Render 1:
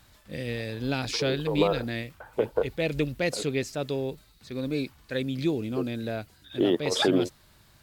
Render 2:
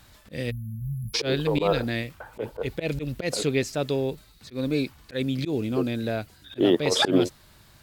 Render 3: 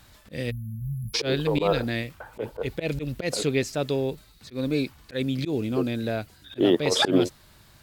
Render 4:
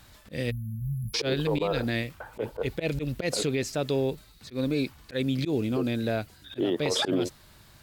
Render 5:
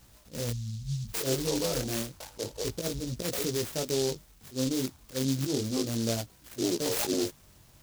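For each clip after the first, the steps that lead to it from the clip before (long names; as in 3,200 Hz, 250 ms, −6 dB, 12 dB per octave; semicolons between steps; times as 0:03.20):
volume swells 103 ms; time-frequency box erased 0:00.51–0:01.14, 230–10,000 Hz; level +4 dB
no processing that can be heard
brickwall limiter −17.5 dBFS, peak gain reduction 8.5 dB
chorus effect 0.31 Hz, delay 16.5 ms, depth 7 ms; short delay modulated by noise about 5,000 Hz, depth 0.16 ms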